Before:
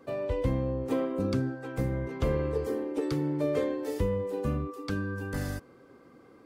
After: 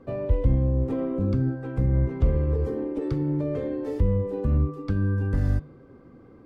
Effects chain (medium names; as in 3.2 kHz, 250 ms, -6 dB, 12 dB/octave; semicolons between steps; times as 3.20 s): peak limiter -24.5 dBFS, peak gain reduction 7 dB; RIAA curve playback; de-hum 150.2 Hz, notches 33